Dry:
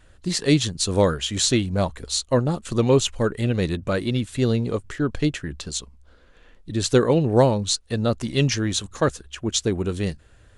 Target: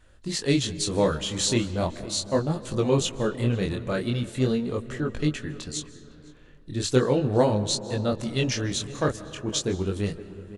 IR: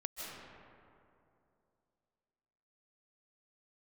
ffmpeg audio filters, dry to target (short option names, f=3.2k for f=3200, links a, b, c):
-filter_complex "[0:a]flanger=delay=19:depth=7.7:speed=0.39,asplit=2[a][b];[b]adelay=508,lowpass=f=1.5k:p=1,volume=-16dB,asplit=2[c][d];[d]adelay=508,lowpass=f=1.5k:p=1,volume=0.33,asplit=2[e][f];[f]adelay=508,lowpass=f=1.5k:p=1,volume=0.33[g];[a][c][e][g]amix=inputs=4:normalize=0,asplit=2[h][i];[1:a]atrim=start_sample=2205[j];[i][j]afir=irnorm=-1:irlink=0,volume=-13dB[k];[h][k]amix=inputs=2:normalize=0,volume=-2dB"